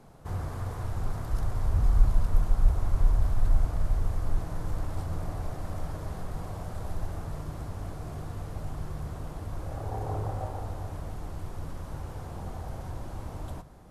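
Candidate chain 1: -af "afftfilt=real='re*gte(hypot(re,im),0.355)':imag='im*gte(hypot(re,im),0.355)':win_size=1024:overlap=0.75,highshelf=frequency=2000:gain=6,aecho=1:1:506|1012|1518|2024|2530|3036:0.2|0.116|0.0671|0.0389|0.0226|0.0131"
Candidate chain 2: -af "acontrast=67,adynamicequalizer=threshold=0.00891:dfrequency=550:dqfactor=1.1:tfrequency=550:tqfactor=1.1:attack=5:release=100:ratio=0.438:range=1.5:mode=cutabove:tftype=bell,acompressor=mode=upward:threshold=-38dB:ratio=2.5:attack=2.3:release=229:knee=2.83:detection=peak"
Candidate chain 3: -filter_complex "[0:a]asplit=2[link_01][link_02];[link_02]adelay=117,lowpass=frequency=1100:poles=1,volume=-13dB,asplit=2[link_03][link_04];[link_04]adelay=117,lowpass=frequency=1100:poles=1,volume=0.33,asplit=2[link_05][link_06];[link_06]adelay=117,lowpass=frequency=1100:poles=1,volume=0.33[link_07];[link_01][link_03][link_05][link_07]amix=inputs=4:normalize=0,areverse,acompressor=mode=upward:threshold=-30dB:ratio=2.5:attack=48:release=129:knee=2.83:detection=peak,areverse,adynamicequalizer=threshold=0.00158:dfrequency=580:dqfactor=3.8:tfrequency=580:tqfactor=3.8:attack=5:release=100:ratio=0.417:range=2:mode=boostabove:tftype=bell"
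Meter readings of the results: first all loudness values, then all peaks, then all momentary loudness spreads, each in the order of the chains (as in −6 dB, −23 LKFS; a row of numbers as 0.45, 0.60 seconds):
−31.0, −27.5, −32.5 LKFS; −8.5, −4.5, −8.0 dBFS; 20, 12, 9 LU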